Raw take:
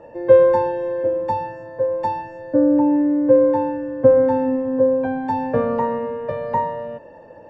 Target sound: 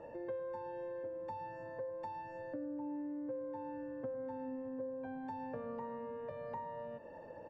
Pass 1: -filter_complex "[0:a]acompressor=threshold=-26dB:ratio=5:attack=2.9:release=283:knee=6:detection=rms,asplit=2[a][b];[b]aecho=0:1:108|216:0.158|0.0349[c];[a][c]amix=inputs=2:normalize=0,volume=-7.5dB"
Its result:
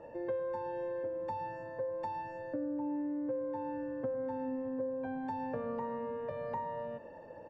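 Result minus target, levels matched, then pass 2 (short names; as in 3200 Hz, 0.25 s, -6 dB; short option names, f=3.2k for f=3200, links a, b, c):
compressor: peak gain reduction -5.5 dB
-filter_complex "[0:a]acompressor=threshold=-33dB:ratio=5:attack=2.9:release=283:knee=6:detection=rms,asplit=2[a][b];[b]aecho=0:1:108|216:0.158|0.0349[c];[a][c]amix=inputs=2:normalize=0,volume=-7.5dB"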